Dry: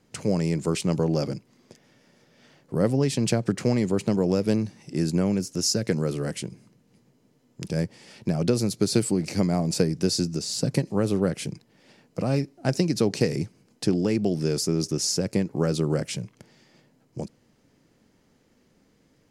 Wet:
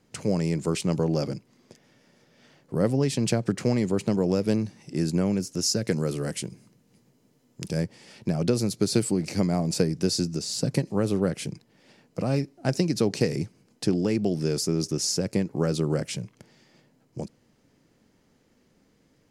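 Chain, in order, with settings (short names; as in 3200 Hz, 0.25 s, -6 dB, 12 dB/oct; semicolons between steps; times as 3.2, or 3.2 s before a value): 5.87–7.78 high shelf 6100 Hz +6 dB; gain -1 dB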